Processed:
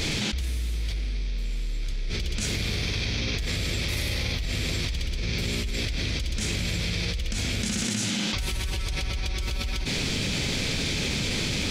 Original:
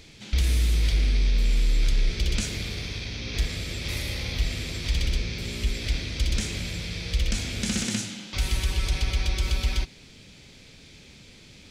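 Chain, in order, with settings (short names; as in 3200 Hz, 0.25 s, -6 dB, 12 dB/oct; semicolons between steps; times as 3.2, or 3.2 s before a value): fast leveller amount 100%; gain -9 dB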